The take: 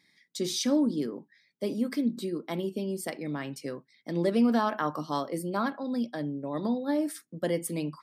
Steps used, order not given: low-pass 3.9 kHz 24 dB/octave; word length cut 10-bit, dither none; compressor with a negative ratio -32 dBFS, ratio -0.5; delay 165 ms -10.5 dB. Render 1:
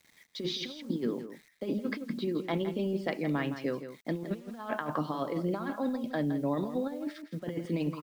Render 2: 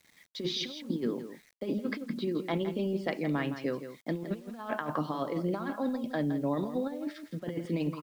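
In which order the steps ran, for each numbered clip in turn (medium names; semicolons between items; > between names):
compressor with a negative ratio > low-pass > word length cut > delay; low-pass > compressor with a negative ratio > delay > word length cut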